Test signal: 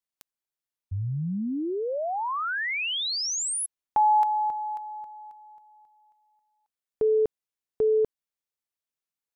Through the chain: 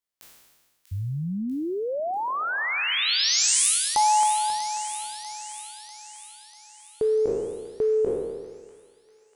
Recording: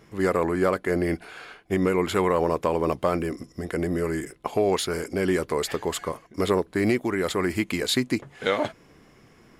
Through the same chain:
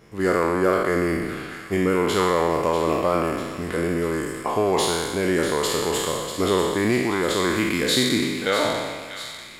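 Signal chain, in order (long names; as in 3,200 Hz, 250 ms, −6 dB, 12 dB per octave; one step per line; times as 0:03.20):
peak hold with a decay on every bin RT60 1.47 s
delay with a high-pass on its return 643 ms, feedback 55%, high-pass 1,800 Hz, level −9 dB
soft clipping −5 dBFS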